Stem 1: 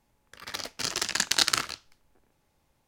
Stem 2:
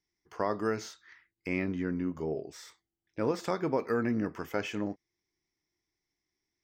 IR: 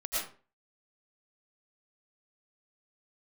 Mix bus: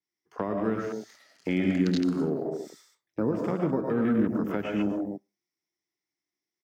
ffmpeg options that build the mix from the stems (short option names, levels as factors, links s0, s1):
-filter_complex "[0:a]adelay=550,volume=0.316,asplit=2[s0][s1];[s1]volume=0.631[s2];[1:a]acontrast=60,acrusher=bits=9:mode=log:mix=0:aa=0.000001,adynamicequalizer=threshold=0.00282:dfrequency=6200:dqfactor=0.7:tfrequency=6200:tqfactor=0.7:attack=5:release=100:ratio=0.375:range=3.5:mode=boostabove:tftype=highshelf,volume=1.06,asplit=4[s3][s4][s5][s6];[s4]volume=0.668[s7];[s5]volume=0.447[s8];[s6]apad=whole_len=150939[s9];[s0][s9]sidechaingate=range=0.0224:threshold=0.00447:ratio=16:detection=peak[s10];[2:a]atrim=start_sample=2205[s11];[s2][s7]amix=inputs=2:normalize=0[s12];[s12][s11]afir=irnorm=-1:irlink=0[s13];[s8]aecho=0:1:247:1[s14];[s10][s3][s13][s14]amix=inputs=4:normalize=0,highpass=160,afwtdn=0.0355,acrossover=split=280[s15][s16];[s16]acompressor=threshold=0.0251:ratio=6[s17];[s15][s17]amix=inputs=2:normalize=0"